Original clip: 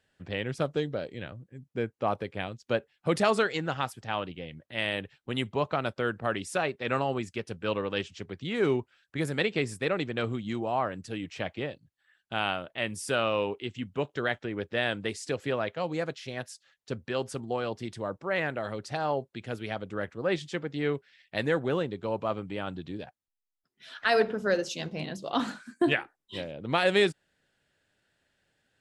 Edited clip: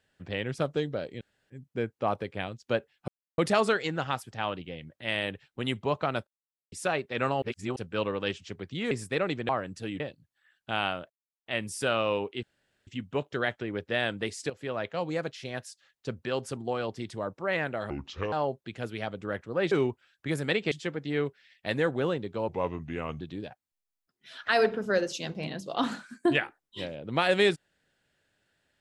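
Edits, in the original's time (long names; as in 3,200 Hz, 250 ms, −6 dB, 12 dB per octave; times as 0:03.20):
0:01.21–0:01.50: fill with room tone
0:03.08: splice in silence 0.30 s
0:05.97–0:06.42: silence
0:07.12–0:07.46: reverse
0:08.61–0:09.61: move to 0:20.40
0:10.19–0:10.77: remove
0:11.28–0:11.63: remove
0:12.73: splice in silence 0.36 s
0:13.70: splice in room tone 0.44 s
0:15.33–0:15.74: fade in, from −12.5 dB
0:18.73–0:19.01: play speed 66%
0:22.17–0:22.77: play speed 83%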